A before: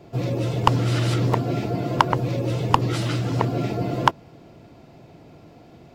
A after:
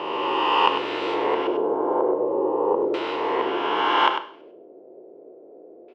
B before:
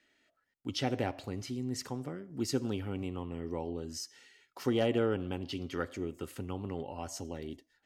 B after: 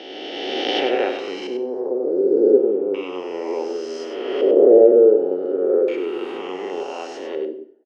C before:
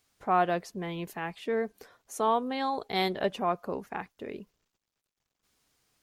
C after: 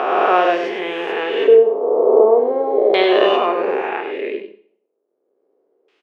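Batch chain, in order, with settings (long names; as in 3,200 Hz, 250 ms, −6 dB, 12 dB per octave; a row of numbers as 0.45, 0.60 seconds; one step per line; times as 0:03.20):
peak hold with a rise ahead of every peak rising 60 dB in 2.52 s
auto-filter low-pass square 0.34 Hz 510–2,800 Hz
four-pole ladder high-pass 340 Hz, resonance 55%
single-tap delay 99 ms −8 dB
four-comb reverb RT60 0.52 s, combs from 29 ms, DRR 10.5 dB
normalise the peak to −1.5 dBFS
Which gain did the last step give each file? +0.5, +13.5, +14.5 decibels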